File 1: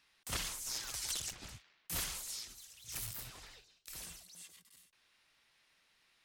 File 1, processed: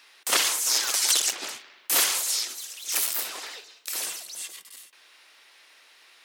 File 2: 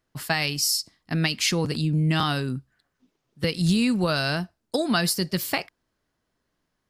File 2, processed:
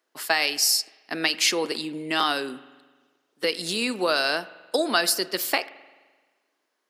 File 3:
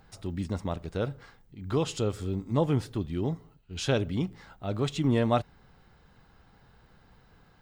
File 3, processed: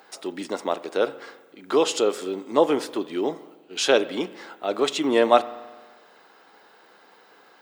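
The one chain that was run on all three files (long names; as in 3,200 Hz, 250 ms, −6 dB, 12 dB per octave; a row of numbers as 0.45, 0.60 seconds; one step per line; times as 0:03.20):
high-pass filter 330 Hz 24 dB per octave
spring reverb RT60 1.4 s, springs 43 ms, chirp 75 ms, DRR 16.5 dB
loudness normalisation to −24 LKFS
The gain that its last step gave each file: +17.0, +2.5, +10.0 decibels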